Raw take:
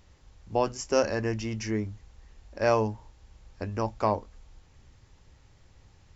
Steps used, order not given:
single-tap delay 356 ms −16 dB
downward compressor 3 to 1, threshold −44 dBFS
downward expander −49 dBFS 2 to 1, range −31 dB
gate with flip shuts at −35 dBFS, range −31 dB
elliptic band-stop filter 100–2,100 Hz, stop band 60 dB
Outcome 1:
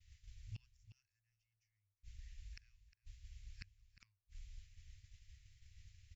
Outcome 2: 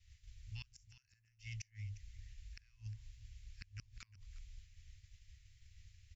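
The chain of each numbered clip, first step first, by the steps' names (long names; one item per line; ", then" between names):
elliptic band-stop filter, then gate with flip, then downward expander, then single-tap delay, then downward compressor
downward expander, then elliptic band-stop filter, then downward compressor, then gate with flip, then single-tap delay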